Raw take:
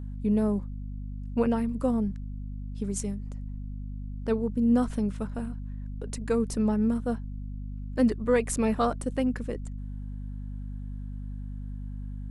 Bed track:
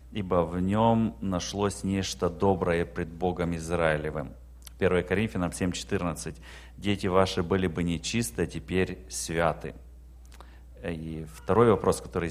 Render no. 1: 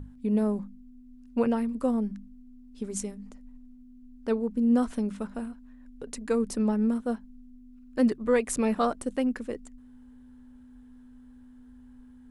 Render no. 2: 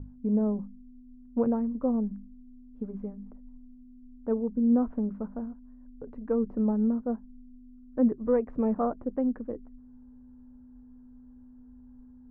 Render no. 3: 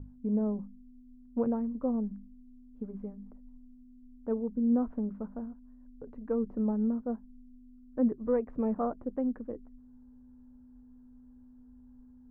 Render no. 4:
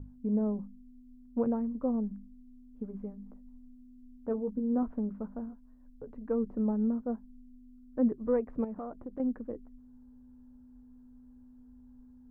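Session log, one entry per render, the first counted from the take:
notches 50/100/150/200 Hz
Bessel low-pass 800 Hz, order 4; notch 390 Hz, Q 12
gain -3.5 dB
3.28–4.83 doubler 15 ms -7 dB; 5.47–6.13 doubler 14 ms -7 dB; 8.64–9.2 compressor, threshold -36 dBFS

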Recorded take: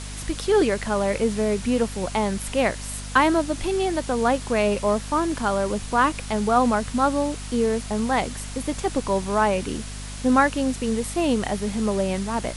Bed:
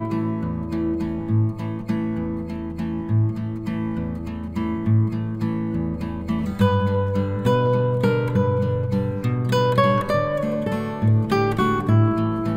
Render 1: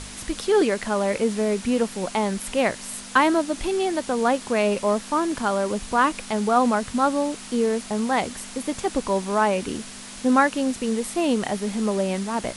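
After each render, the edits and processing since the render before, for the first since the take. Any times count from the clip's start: de-hum 50 Hz, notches 3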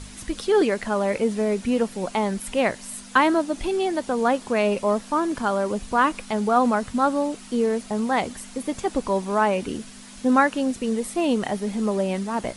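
denoiser 7 dB, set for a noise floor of -39 dBFS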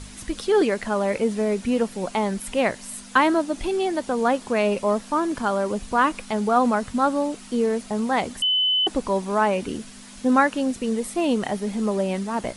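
8.42–8.87 bleep 3020 Hz -17.5 dBFS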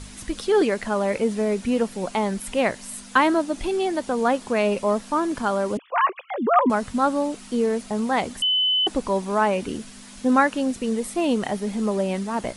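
5.77–6.7 sine-wave speech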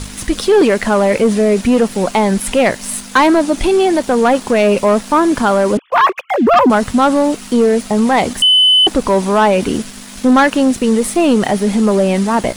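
sample leveller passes 2; in parallel at 0 dB: limiter -13.5 dBFS, peak gain reduction 7.5 dB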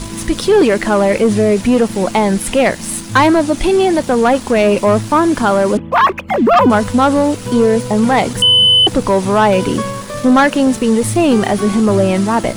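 add bed -4.5 dB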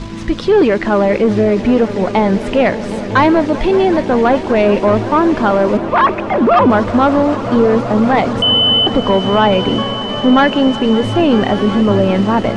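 air absorption 170 m; swelling echo 0.191 s, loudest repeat 5, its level -18 dB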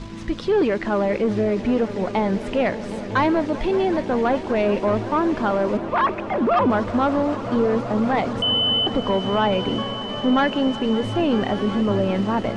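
gain -8.5 dB

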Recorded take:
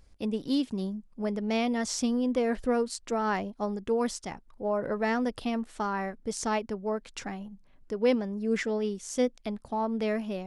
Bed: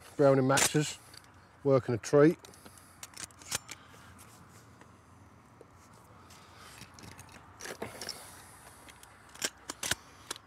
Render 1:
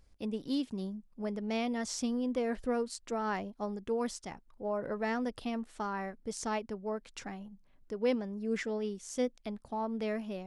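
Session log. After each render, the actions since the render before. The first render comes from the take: gain -5.5 dB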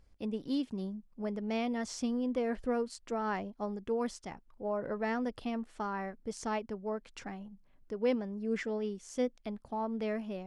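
high shelf 5100 Hz -7.5 dB; notch 3800 Hz, Q 26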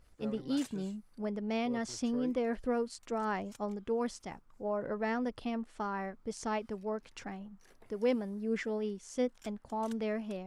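add bed -22 dB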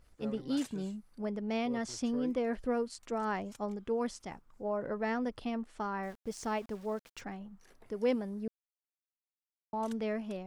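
6.03–7.21 sample gate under -52 dBFS; 8.48–9.73 mute

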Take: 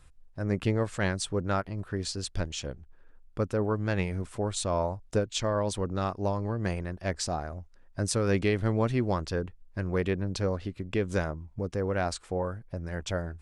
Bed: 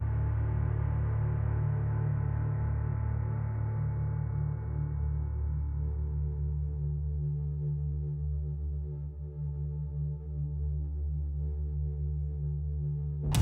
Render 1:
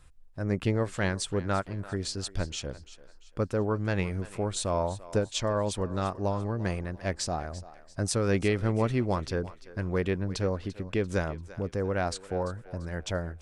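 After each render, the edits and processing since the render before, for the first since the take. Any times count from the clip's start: thinning echo 0.342 s, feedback 39%, high-pass 440 Hz, level -15.5 dB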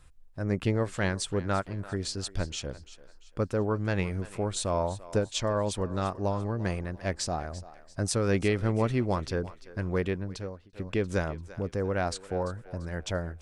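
9.98–10.73 fade out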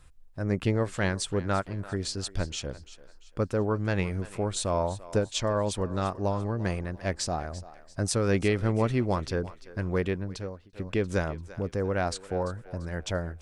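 gain +1 dB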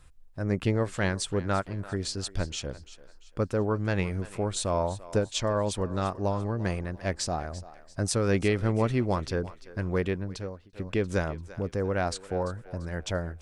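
nothing audible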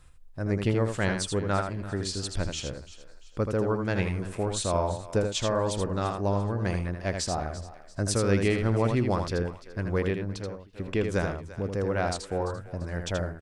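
echo 80 ms -6 dB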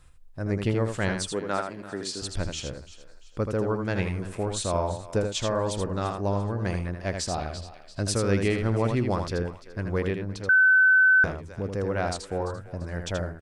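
1.32–2.22 HPF 230 Hz; 7.34–8.11 band shelf 3400 Hz +9.5 dB 1.2 oct; 10.49–11.24 bleep 1520 Hz -14.5 dBFS

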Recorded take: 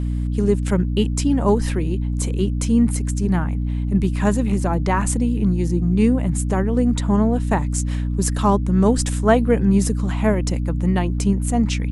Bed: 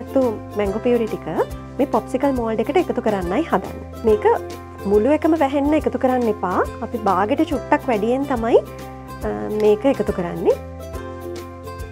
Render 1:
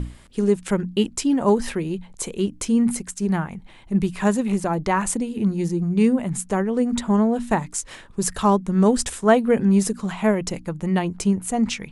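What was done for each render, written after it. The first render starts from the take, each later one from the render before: notches 60/120/180/240/300 Hz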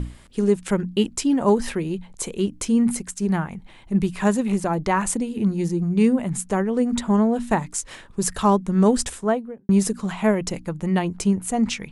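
8.97–9.69 studio fade out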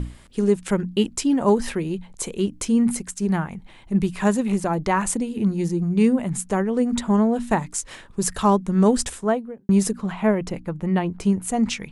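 9.91–11.24 bell 7700 Hz -11.5 dB 1.8 oct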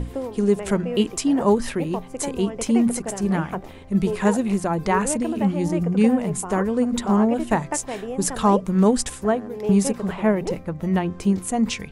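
add bed -12 dB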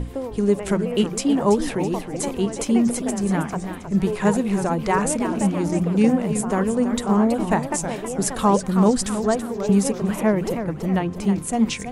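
warbling echo 0.323 s, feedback 44%, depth 209 cents, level -9.5 dB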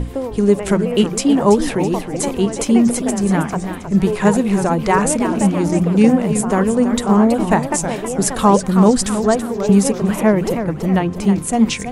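gain +5.5 dB; limiter -1 dBFS, peak gain reduction 1 dB

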